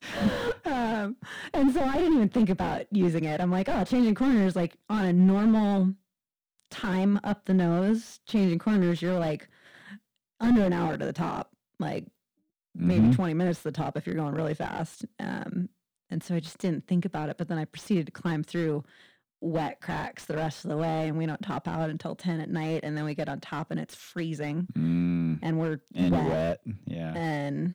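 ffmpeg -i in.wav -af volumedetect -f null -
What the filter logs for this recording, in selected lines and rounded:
mean_volume: -27.7 dB
max_volume: -11.1 dB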